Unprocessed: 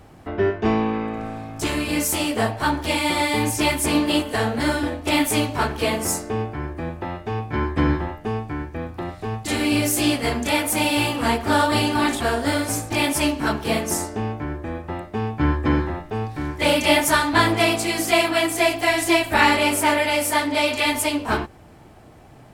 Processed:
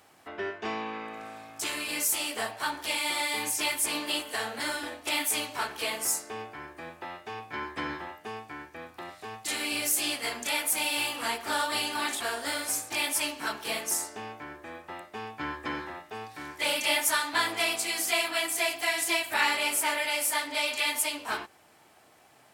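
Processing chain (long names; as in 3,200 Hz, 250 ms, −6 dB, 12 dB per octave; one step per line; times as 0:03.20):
high-pass filter 1,400 Hz 6 dB per octave
high-shelf EQ 6,900 Hz +4 dB
in parallel at −3 dB: downward compressor, threshold −28 dBFS, peak gain reduction 12.5 dB
on the sum: level −7.5 dB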